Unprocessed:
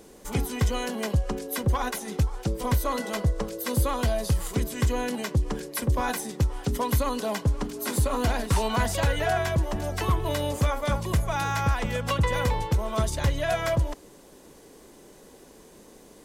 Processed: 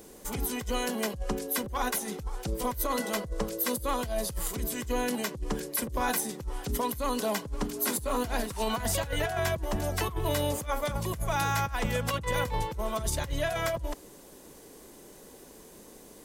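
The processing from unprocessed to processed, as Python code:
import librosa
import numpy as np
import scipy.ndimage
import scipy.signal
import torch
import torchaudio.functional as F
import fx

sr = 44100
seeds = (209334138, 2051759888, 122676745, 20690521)

y = fx.high_shelf(x, sr, hz=11000.0, db=11.0)
y = fx.over_compress(y, sr, threshold_db=-26.0, ratio=-0.5)
y = y * librosa.db_to_amplitude(-3.0)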